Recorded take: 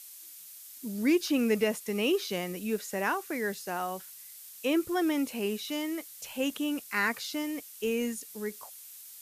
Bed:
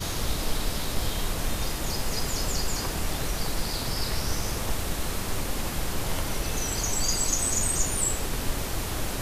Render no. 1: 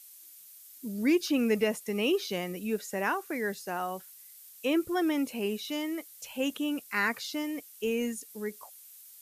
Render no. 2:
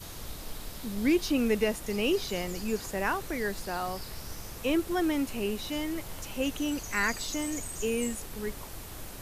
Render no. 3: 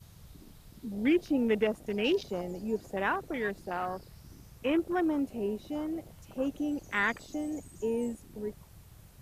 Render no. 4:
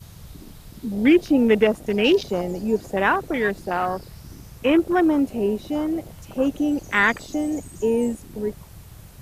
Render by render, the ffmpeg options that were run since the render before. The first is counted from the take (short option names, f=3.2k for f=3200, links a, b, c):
-af "afftdn=nr=6:nf=-49"
-filter_complex "[1:a]volume=-13dB[a];[0:a][a]amix=inputs=2:normalize=0"
-af "afwtdn=0.0158,highpass=f=140:p=1"
-af "volume=10.5dB"